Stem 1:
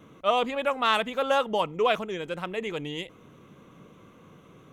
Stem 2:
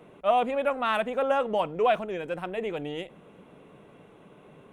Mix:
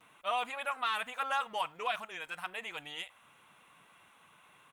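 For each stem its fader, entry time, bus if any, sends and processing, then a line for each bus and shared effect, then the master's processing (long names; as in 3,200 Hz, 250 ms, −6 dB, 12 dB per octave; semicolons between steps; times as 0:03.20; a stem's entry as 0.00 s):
−19.5 dB, 0.00 s, no send, reverb reduction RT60 0.61 s; parametric band 4,300 Hz +11.5 dB 1.1 octaves
−0.5 dB, 7.2 ms, polarity flipped, no send, inverse Chebyshev high-pass filter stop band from 160 Hz, stop band 80 dB; high-shelf EQ 7,600 Hz +11.5 dB; brickwall limiter −22.5 dBFS, peak gain reduction 7.5 dB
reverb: not used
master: no processing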